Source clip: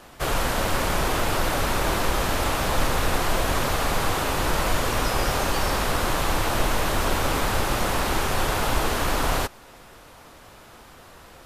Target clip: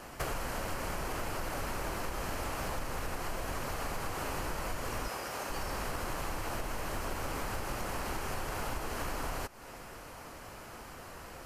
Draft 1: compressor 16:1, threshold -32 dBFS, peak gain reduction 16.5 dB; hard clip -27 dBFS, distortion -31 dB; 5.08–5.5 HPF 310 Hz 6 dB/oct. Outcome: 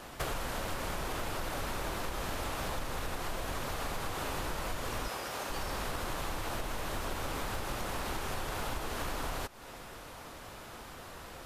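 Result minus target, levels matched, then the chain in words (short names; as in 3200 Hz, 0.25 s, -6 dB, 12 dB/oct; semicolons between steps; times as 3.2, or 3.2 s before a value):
4000 Hz band +2.5 dB
compressor 16:1, threshold -32 dBFS, peak gain reduction 16.5 dB; bell 3600 Hz -10 dB 0.25 oct; hard clip -27 dBFS, distortion -31 dB; 5.08–5.5 HPF 310 Hz 6 dB/oct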